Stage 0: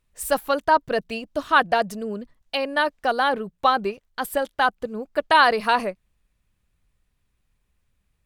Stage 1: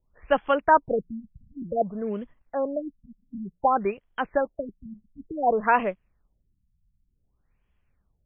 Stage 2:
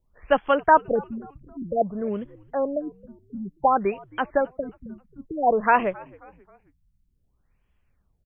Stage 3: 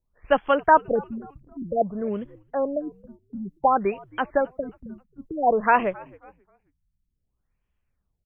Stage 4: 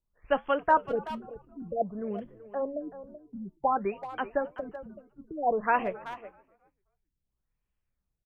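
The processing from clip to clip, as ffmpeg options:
-filter_complex "[0:a]acrossover=split=360|1300|4900[s0][s1][s2][s3];[s0]acrusher=bits=5:mode=log:mix=0:aa=0.000001[s4];[s4][s1][s2][s3]amix=inputs=4:normalize=0,afftfilt=real='re*lt(b*sr/1024,210*pow(3500/210,0.5+0.5*sin(2*PI*0.55*pts/sr)))':imag='im*lt(b*sr/1024,210*pow(3500/210,0.5+0.5*sin(2*PI*0.55*pts/sr)))':win_size=1024:overlap=0.75"
-filter_complex "[0:a]asplit=4[s0][s1][s2][s3];[s1]adelay=267,afreqshift=-90,volume=0.0668[s4];[s2]adelay=534,afreqshift=-180,volume=0.0309[s5];[s3]adelay=801,afreqshift=-270,volume=0.0141[s6];[s0][s4][s5][s6]amix=inputs=4:normalize=0,volume=1.26"
-af "agate=range=0.398:threshold=0.00501:ratio=16:detection=peak"
-filter_complex "[0:a]asplit=2[s0][s1];[s1]adelay=380,highpass=300,lowpass=3400,asoftclip=type=hard:threshold=0.224,volume=0.224[s2];[s0][s2]amix=inputs=2:normalize=0,flanger=delay=5:depth=2.1:regen=-76:speed=1.5:shape=triangular,volume=0.75"

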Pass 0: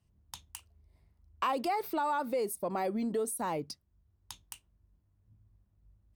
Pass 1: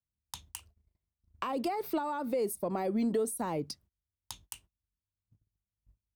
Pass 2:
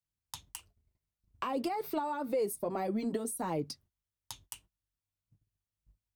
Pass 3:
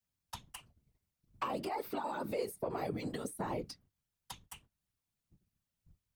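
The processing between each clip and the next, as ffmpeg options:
-filter_complex "[0:a]agate=range=0.0447:threshold=0.00112:ratio=16:detection=peak,acrossover=split=460[s0][s1];[s1]acompressor=threshold=0.0112:ratio=5[s2];[s0][s2]amix=inputs=2:normalize=0,volume=1.5"
-af "flanger=delay=6.1:depth=1.9:regen=-40:speed=1.7:shape=sinusoidal,volume=1.41"
-filter_complex "[0:a]acrossover=split=1100|2800[s0][s1][s2];[s0]acompressor=threshold=0.01:ratio=4[s3];[s1]acompressor=threshold=0.00398:ratio=4[s4];[s2]acompressor=threshold=0.00224:ratio=4[s5];[s3][s4][s5]amix=inputs=3:normalize=0,afftfilt=real='hypot(re,im)*cos(2*PI*random(0))':imag='hypot(re,im)*sin(2*PI*random(1))':win_size=512:overlap=0.75,volume=2.82"

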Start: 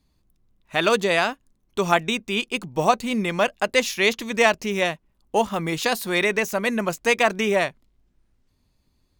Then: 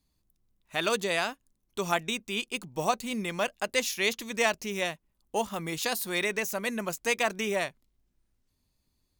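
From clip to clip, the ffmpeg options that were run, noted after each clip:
-af "highshelf=f=5100:g=10,volume=0.355"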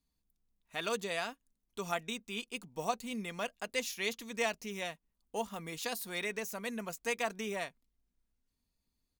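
-af "aecho=1:1:4.3:0.33,volume=0.376"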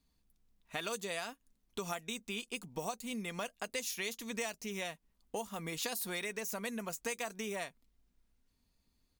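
-filter_complex "[0:a]acrossover=split=5800[s0][s1];[s0]acompressor=threshold=0.00631:ratio=6[s2];[s1]flanger=delay=7.4:depth=6.6:regen=20:speed=0.63:shape=triangular[s3];[s2][s3]amix=inputs=2:normalize=0,volume=2.24"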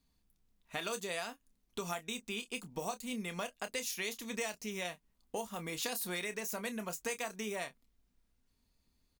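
-filter_complex "[0:a]asplit=2[s0][s1];[s1]adelay=28,volume=0.282[s2];[s0][s2]amix=inputs=2:normalize=0"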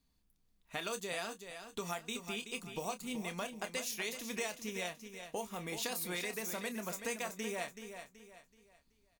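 -af "aecho=1:1:378|756|1134|1512:0.355|0.124|0.0435|0.0152,volume=0.891"

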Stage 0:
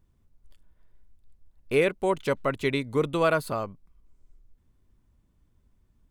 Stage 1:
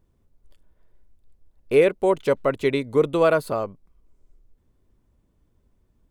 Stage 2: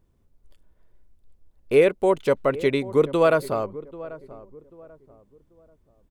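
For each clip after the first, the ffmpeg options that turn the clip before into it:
-af "equalizer=f=480:t=o:w=1.5:g=7"
-filter_complex "[0:a]asplit=2[s0][s1];[s1]adelay=788,lowpass=f=1000:p=1,volume=0.15,asplit=2[s2][s3];[s3]adelay=788,lowpass=f=1000:p=1,volume=0.35,asplit=2[s4][s5];[s5]adelay=788,lowpass=f=1000:p=1,volume=0.35[s6];[s0][s2][s4][s6]amix=inputs=4:normalize=0"

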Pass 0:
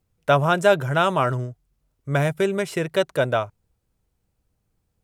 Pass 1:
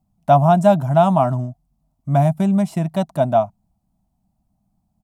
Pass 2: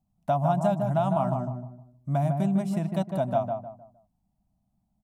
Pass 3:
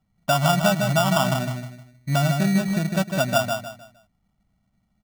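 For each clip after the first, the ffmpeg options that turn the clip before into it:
-af "firequalizer=gain_entry='entry(110,0);entry(200,13);entry(460,-21);entry(670,10);entry(1500,-13);entry(4300,-7);entry(10000,-4)':delay=0.05:min_phase=1,volume=1.19"
-filter_complex "[0:a]acompressor=threshold=0.178:ratio=3,asplit=2[s0][s1];[s1]adelay=154,lowpass=f=1300:p=1,volume=0.631,asplit=2[s2][s3];[s3]adelay=154,lowpass=f=1300:p=1,volume=0.34,asplit=2[s4][s5];[s5]adelay=154,lowpass=f=1300:p=1,volume=0.34,asplit=2[s6][s7];[s7]adelay=154,lowpass=f=1300:p=1,volume=0.34[s8];[s2][s4][s6][s8]amix=inputs=4:normalize=0[s9];[s0][s9]amix=inputs=2:normalize=0,volume=0.422"
-af "acrusher=samples=21:mix=1:aa=0.000001,volume=1.68"

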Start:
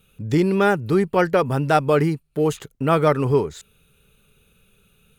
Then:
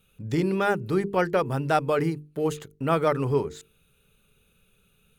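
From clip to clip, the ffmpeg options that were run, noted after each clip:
-af "bandreject=f=50:t=h:w=6,bandreject=f=100:t=h:w=6,bandreject=f=150:t=h:w=6,bandreject=f=200:t=h:w=6,bandreject=f=250:t=h:w=6,bandreject=f=300:t=h:w=6,bandreject=f=350:t=h:w=6,bandreject=f=400:t=h:w=6,bandreject=f=450:t=h:w=6,volume=0.562"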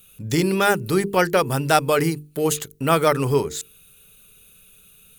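-af "crystalizer=i=4:c=0,volume=1.58"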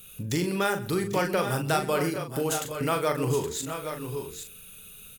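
-filter_complex "[0:a]acompressor=threshold=0.0158:ratio=2,asplit=2[s0][s1];[s1]adelay=40,volume=0.447[s2];[s0][s2]amix=inputs=2:normalize=0,aecho=1:1:126|794|820:0.112|0.168|0.376,volume=1.41"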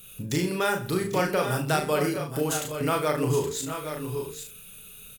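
-filter_complex "[0:a]asplit=2[s0][s1];[s1]adelay=33,volume=0.501[s2];[s0][s2]amix=inputs=2:normalize=0"

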